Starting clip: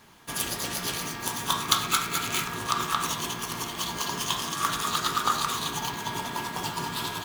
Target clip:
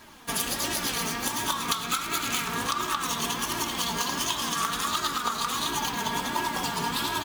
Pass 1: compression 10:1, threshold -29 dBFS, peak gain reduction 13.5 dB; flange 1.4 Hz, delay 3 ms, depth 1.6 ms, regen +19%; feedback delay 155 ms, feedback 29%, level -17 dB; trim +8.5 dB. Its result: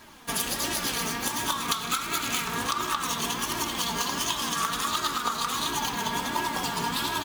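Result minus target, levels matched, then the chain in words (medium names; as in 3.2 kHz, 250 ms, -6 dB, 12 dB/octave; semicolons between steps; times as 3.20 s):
echo 43 ms late
compression 10:1, threshold -29 dBFS, peak gain reduction 13.5 dB; flange 1.4 Hz, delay 3 ms, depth 1.6 ms, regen +19%; feedback delay 112 ms, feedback 29%, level -17 dB; trim +8.5 dB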